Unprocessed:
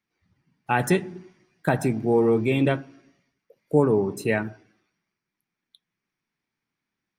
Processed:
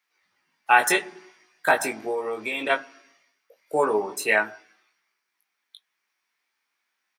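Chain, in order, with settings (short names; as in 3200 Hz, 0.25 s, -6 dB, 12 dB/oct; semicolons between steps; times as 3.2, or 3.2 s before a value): HPF 790 Hz 12 dB/oct; 2.01–2.7 compressor 5:1, threshold -34 dBFS, peak gain reduction 8.5 dB; doubler 19 ms -4 dB; gain +7 dB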